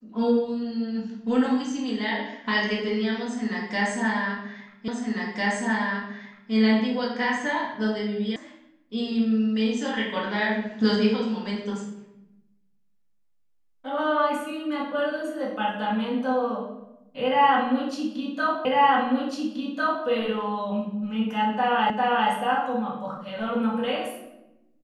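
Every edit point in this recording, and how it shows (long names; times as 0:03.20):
0:04.88: the same again, the last 1.65 s
0:08.36: cut off before it has died away
0:18.65: the same again, the last 1.4 s
0:21.90: the same again, the last 0.4 s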